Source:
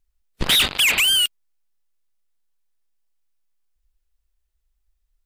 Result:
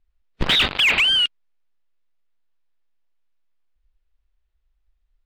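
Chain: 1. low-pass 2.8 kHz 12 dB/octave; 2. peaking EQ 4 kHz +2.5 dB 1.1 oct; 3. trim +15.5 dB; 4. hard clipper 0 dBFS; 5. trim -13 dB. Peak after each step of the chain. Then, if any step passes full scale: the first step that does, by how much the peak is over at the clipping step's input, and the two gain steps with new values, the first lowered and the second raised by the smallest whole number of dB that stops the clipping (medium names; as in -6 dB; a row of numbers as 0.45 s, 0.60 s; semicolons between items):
-13.0 dBFS, -12.5 dBFS, +3.0 dBFS, 0.0 dBFS, -13.0 dBFS; step 3, 3.0 dB; step 3 +12.5 dB, step 5 -10 dB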